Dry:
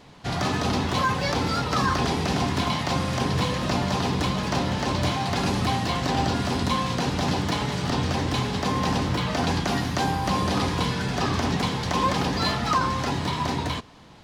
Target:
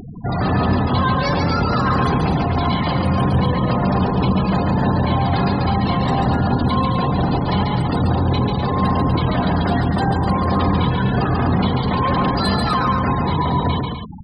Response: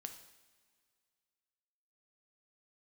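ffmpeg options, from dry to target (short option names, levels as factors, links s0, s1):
-filter_complex "[0:a]asoftclip=type=tanh:threshold=0.0501,asplit=2[s0][s1];[1:a]atrim=start_sample=2205,lowshelf=f=240:g=5[s2];[s1][s2]afir=irnorm=-1:irlink=0,volume=1.19[s3];[s0][s3]amix=inputs=2:normalize=0,aexciter=amount=3.7:drive=2.7:freq=7900,acompressor=mode=upward:threshold=0.0447:ratio=2.5,afftfilt=real='re*gte(hypot(re,im),0.0631)':imag='im*gte(hypot(re,im),0.0631)':win_size=1024:overlap=0.75,aecho=1:1:139.9|250.7:0.631|0.398,volume=1.78"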